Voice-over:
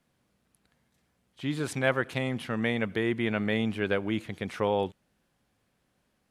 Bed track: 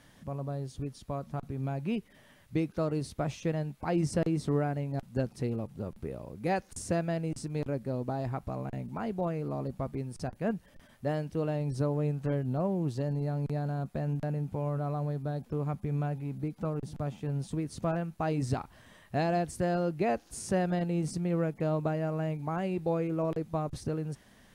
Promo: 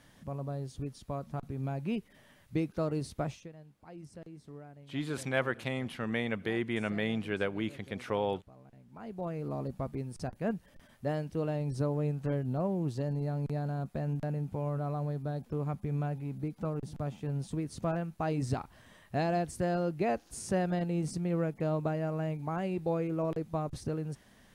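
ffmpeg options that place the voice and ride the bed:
-filter_complex "[0:a]adelay=3500,volume=-4.5dB[a];[1:a]volume=16.5dB,afade=t=out:st=3.22:d=0.27:silence=0.125893,afade=t=in:st=8.85:d=0.66:silence=0.125893[b];[a][b]amix=inputs=2:normalize=0"

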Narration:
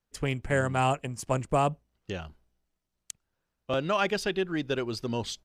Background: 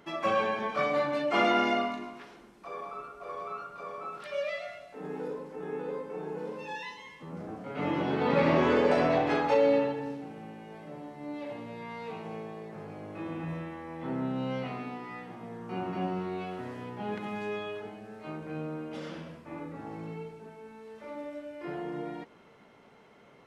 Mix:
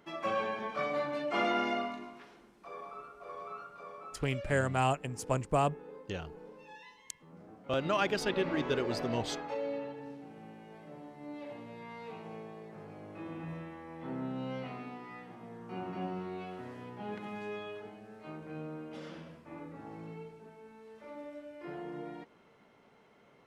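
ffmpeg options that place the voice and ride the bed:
-filter_complex "[0:a]adelay=4000,volume=-3.5dB[a];[1:a]volume=2dB,afade=t=out:st=3.64:d=0.95:silence=0.421697,afade=t=in:st=9.78:d=0.69:silence=0.421697[b];[a][b]amix=inputs=2:normalize=0"

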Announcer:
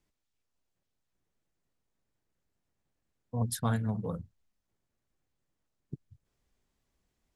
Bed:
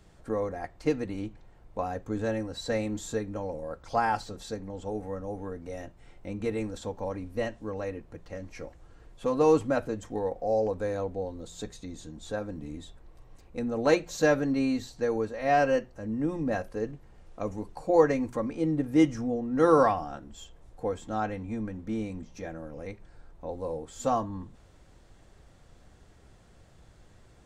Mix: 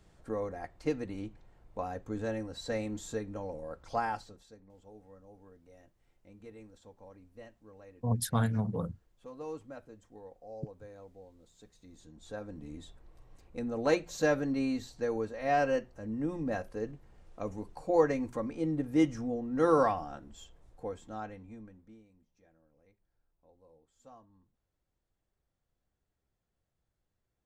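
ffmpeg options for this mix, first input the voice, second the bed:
-filter_complex "[0:a]adelay=4700,volume=1dB[a];[1:a]volume=10dB,afade=t=out:st=3.95:d=0.51:silence=0.188365,afade=t=in:st=11.7:d=1.14:silence=0.177828,afade=t=out:st=20.26:d=1.77:silence=0.0668344[b];[a][b]amix=inputs=2:normalize=0"

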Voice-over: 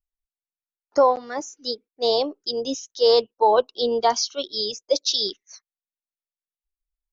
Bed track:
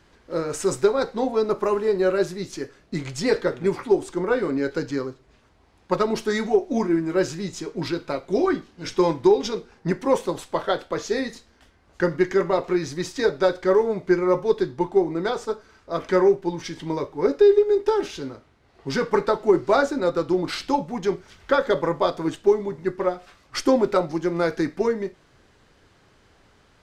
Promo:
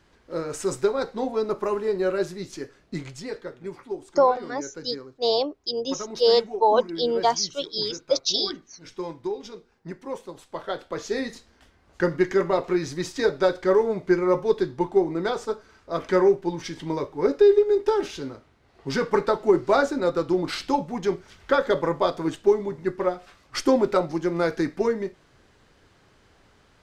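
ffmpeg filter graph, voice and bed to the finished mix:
-filter_complex "[0:a]adelay=3200,volume=-1.5dB[a];[1:a]volume=8.5dB,afade=t=out:st=2.96:d=0.31:silence=0.334965,afade=t=in:st=10.36:d=1.03:silence=0.251189[b];[a][b]amix=inputs=2:normalize=0"

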